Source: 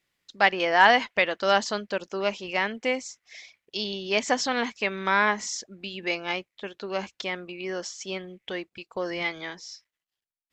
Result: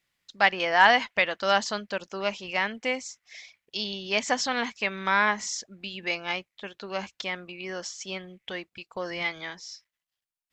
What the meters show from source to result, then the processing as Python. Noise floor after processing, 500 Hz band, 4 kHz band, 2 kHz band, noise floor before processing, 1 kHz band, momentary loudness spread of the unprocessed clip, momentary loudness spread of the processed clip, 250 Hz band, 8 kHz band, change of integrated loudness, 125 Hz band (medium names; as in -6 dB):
under -85 dBFS, -3.0 dB, 0.0 dB, 0.0 dB, under -85 dBFS, -1.0 dB, 16 LU, 16 LU, -3.0 dB, 0.0 dB, -0.5 dB, -1.5 dB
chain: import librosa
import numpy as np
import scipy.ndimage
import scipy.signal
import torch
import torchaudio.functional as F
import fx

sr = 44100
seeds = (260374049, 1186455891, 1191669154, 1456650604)

y = fx.peak_eq(x, sr, hz=370.0, db=-5.5, octaves=1.2)